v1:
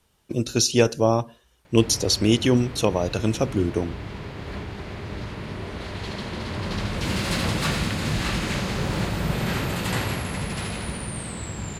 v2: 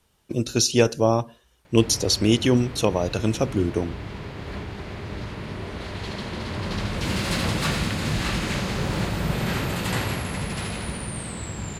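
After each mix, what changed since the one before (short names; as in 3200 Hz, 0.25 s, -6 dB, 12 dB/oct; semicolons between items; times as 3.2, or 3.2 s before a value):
none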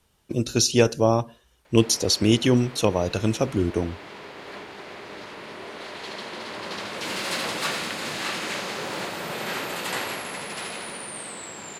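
background: add HPF 390 Hz 12 dB/oct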